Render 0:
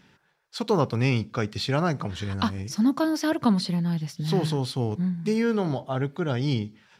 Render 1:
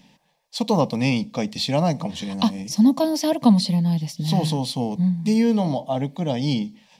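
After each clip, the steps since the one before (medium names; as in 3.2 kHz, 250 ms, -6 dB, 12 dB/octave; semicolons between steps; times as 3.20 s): static phaser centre 380 Hz, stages 6; trim +7 dB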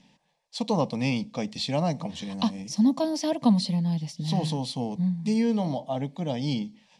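low-pass 9.8 kHz 24 dB/octave; trim -5.5 dB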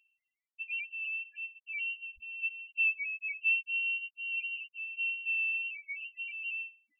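loudest bins only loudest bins 1; frequency inversion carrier 2.9 kHz; trim -3.5 dB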